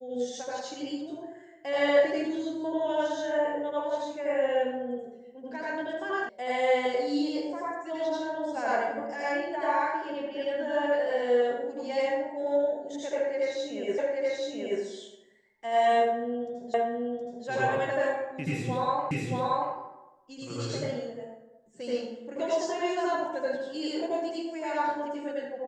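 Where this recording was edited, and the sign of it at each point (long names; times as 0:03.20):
0:06.29: cut off before it has died away
0:13.98: the same again, the last 0.83 s
0:16.74: the same again, the last 0.72 s
0:19.11: the same again, the last 0.63 s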